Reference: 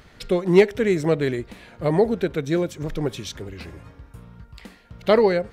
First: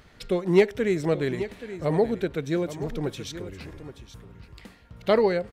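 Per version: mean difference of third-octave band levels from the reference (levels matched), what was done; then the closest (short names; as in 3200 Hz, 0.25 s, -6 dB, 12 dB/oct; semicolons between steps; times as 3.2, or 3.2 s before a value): 1.5 dB: echo 0.827 s -13 dB; gain -4 dB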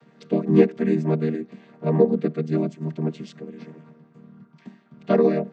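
7.0 dB: chord vocoder major triad, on D#3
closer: first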